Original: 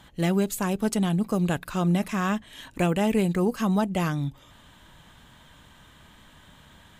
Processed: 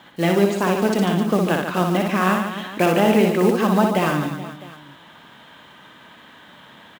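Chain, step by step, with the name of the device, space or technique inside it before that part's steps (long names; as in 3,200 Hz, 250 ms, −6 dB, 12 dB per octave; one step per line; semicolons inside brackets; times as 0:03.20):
early digital voice recorder (band-pass filter 240–3,600 Hz; one scale factor per block 5 bits)
reverse bouncing-ball delay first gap 60 ms, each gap 1.4×, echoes 5
level +7.5 dB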